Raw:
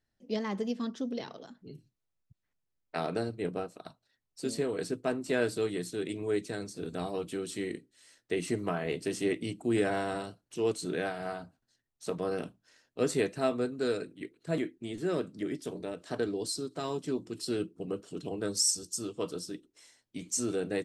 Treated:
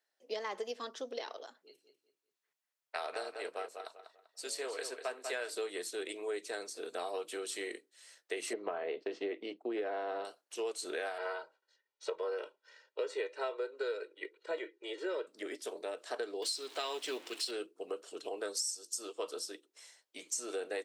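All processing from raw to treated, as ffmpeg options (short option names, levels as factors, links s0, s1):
-filter_complex "[0:a]asettb=1/sr,asplit=3[s0][s1][s2];[s0]atrim=end=1.624[s3];[s1]atrim=start=1.62:end=5.5,asetpts=PTS-STARTPTS,afade=t=in:d=0.004:c=qsin,afade=t=out:st=3.876:d=0.004:c=qsin,lowshelf=f=470:g=-11.5,asplit=2[s4][s5];[s5]adelay=195,lowpass=f=4300:p=1,volume=0.398,asplit=2[s6][s7];[s7]adelay=195,lowpass=f=4300:p=1,volume=0.3,asplit=2[s8][s9];[s9]adelay=195,lowpass=f=4300:p=1,volume=0.3,asplit=2[s10][s11];[s11]adelay=195,lowpass=f=4300:p=1,volume=0.3[s12];[s4][s6][s8][s10][s12]amix=inputs=5:normalize=0,atrim=end_sample=171108[s13];[s2]atrim=start=5.496[s14];[s3][s13]acrossfade=d=0.004:c1=hsin:c2=qsin[s15];[s15][s14]acrossfade=d=0.004:c1=qsin:c2=hsin,asettb=1/sr,asplit=3[s16][s17][s18];[s16]atrim=end=8.534[s19];[s17]atrim=start=8.53:end=10.25,asetpts=PTS-STARTPTS,afade=t=in:d=0.004:c=qsin,afade=t=out:st=1.716:d=0.004:c=qsin,lowpass=f=4500:w=0.5412,lowpass=f=4500:w=1.3066,tiltshelf=f=880:g=6,agate=range=0.0224:threshold=0.0126:ratio=3:release=100:detection=peak[s20];[s18]atrim=start=10.246[s21];[s19][s20]acrossfade=d=0.004:c1=hsin:c2=qsin[s22];[s22][s21]acrossfade=d=0.004:c1=qsin:c2=hsin,asettb=1/sr,asplit=3[s23][s24][s25];[s23]atrim=end=11.184[s26];[s24]atrim=start=11.18:end=15.27,asetpts=PTS-STARTPTS,afade=t=in:d=0.004:c=qsin,afade=t=out:st=4.086:d=0.004:c=qsin,highpass=220,lowpass=4000,aecho=1:1:2.1:0.98,atrim=end_sample=180369[s27];[s25]atrim=start=15.266[s28];[s26][s27]acrossfade=d=0.004:c1=hsin:c2=qsin[s29];[s29][s28]acrossfade=d=0.004:c1=qsin:c2=hsin,asettb=1/sr,asplit=3[s30][s31][s32];[s30]atrim=end=16.424[s33];[s31]atrim=start=16.42:end=17.51,asetpts=PTS-STARTPTS,afade=t=in:d=0.004:c=qsin,afade=t=out:st=1.086:d=0.004:c=qsin,aeval=exprs='val(0)+0.5*0.00316*sgn(val(0))':c=same,acrusher=bits=8:mode=log:mix=0:aa=0.000001,equalizer=f=2900:w=0.96:g=11[s34];[s32]atrim=start=17.506[s35];[s33][s34]acrossfade=d=0.004:c1=hsin:c2=qsin[s36];[s36][s35]acrossfade=d=0.004:c1=qsin:c2=hsin,highpass=f=450:w=0.5412,highpass=f=450:w=1.3066,acompressor=threshold=0.0158:ratio=6,volume=1.26"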